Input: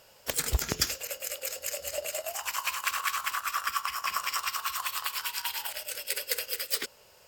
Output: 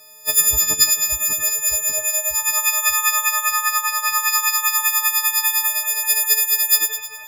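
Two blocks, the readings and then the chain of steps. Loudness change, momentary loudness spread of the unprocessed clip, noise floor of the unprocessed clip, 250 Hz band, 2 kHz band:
+15.0 dB, 5 LU, −58 dBFS, can't be measured, +11.5 dB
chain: every partial snapped to a pitch grid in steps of 6 semitones
echo with a time of its own for lows and highs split 3,000 Hz, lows 592 ms, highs 104 ms, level −6.5 dB

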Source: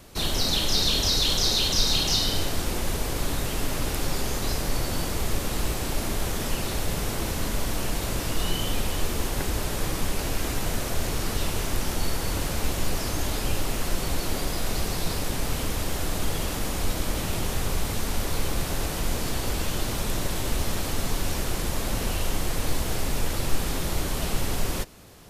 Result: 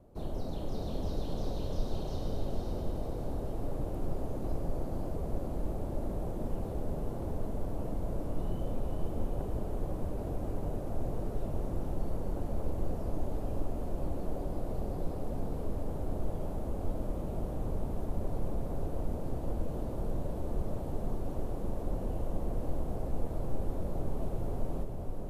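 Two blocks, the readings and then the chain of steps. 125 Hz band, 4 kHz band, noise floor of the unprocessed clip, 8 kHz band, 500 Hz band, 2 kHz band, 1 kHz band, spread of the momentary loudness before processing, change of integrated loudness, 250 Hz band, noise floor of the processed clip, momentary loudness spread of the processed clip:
−6.0 dB, −30.5 dB, −30 dBFS, −29.5 dB, −5.5 dB, −25.5 dB, −11.0 dB, 8 LU, −10.5 dB, −6.0 dB, −37 dBFS, 1 LU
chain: drawn EQ curve 420 Hz 0 dB, 620 Hz +2 dB, 1,900 Hz −21 dB, 5,300 Hz −26 dB, 11,000 Hz −21 dB
on a send: feedback delay with all-pass diffusion 504 ms, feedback 45%, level −3.5 dB
on the sum: level −8 dB

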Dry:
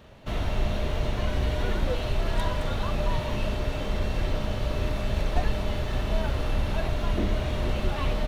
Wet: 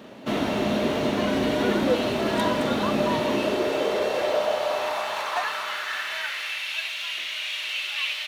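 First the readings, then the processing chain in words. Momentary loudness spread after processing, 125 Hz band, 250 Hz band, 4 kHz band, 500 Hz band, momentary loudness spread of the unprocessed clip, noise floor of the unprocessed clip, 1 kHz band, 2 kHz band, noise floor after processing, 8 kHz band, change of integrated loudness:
5 LU, −9.0 dB, +7.0 dB, +9.0 dB, +7.5 dB, 2 LU, −31 dBFS, +6.5 dB, +8.5 dB, −32 dBFS, +7.0 dB, +4.0 dB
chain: high-pass filter sweep 250 Hz → 2,600 Hz, 0:03.09–0:06.76
level +6.5 dB

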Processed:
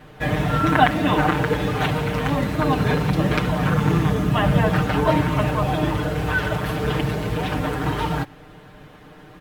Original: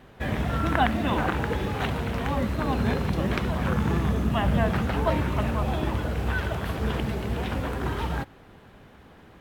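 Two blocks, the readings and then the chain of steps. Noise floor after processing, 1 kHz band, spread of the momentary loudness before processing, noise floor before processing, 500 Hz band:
−45 dBFS, +6.5 dB, 6 LU, −51 dBFS, +6.0 dB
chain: comb filter 6.6 ms, depth 100%
level +3.5 dB

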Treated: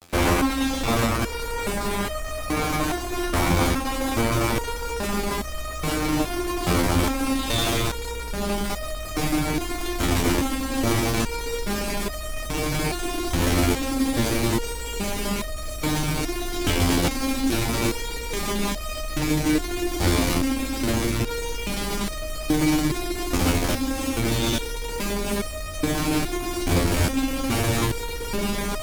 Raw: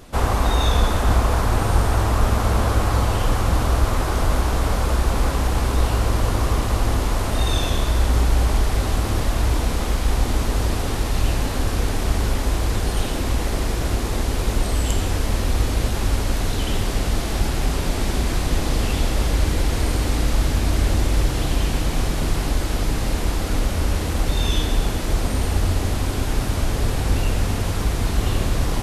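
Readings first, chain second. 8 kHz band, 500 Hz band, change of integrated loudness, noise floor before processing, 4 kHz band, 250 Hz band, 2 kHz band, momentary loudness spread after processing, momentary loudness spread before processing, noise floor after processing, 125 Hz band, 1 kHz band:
+1.0 dB, 0.0 dB, −2.5 dB, −24 dBFS, 0.0 dB, +3.0 dB, +1.0 dB, 8 LU, 4 LU, −31 dBFS, −6.5 dB, −1.5 dB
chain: fuzz pedal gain 32 dB, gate −37 dBFS
hollow resonant body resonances 290/2,300 Hz, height 8 dB, ringing for 30 ms
step-sequenced resonator 2.4 Hz 87–620 Hz
level +4.5 dB

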